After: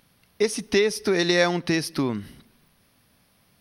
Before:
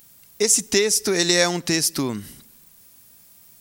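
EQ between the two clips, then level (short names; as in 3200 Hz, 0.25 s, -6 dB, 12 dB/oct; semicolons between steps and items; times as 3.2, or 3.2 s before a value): running mean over 6 samples; 0.0 dB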